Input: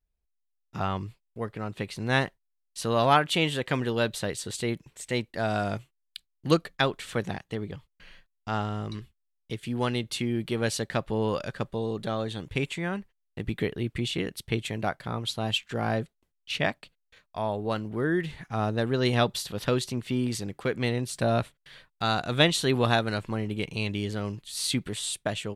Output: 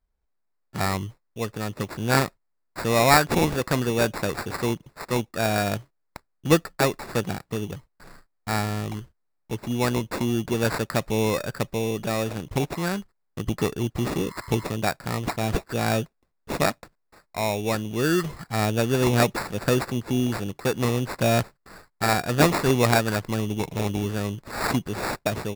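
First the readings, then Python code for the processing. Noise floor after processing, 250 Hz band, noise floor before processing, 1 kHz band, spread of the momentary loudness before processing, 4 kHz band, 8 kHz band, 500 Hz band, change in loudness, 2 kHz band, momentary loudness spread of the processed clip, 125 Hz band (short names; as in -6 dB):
-73 dBFS, +4.0 dB, -77 dBFS, +4.0 dB, 13 LU, -0.5 dB, +5.0 dB, +4.0 dB, +4.0 dB, +3.5 dB, 11 LU, +4.0 dB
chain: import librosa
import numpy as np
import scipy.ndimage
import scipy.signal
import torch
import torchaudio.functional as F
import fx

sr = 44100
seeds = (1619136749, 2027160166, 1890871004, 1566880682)

y = fx.spec_repair(x, sr, seeds[0], start_s=13.98, length_s=0.64, low_hz=600.0, high_hz=2200.0, source='both')
y = fx.sample_hold(y, sr, seeds[1], rate_hz=3100.0, jitter_pct=0)
y = F.gain(torch.from_numpy(y), 4.0).numpy()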